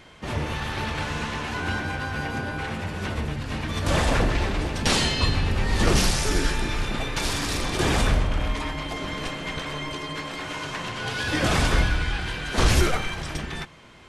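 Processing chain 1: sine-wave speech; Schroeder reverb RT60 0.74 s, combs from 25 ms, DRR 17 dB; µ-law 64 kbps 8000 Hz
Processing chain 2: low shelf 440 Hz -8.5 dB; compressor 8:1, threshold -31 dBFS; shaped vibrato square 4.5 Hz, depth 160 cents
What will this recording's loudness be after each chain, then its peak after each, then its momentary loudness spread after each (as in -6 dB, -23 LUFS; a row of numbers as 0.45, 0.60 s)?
-23.0, -34.5 LUFS; -5.0, -18.0 dBFS; 10, 3 LU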